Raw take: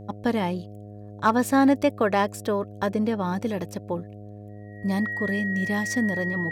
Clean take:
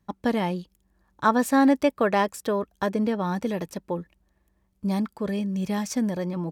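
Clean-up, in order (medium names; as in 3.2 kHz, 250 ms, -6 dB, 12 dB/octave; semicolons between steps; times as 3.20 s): clip repair -9.5 dBFS; de-hum 103.4 Hz, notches 7; band-stop 1.9 kHz, Q 30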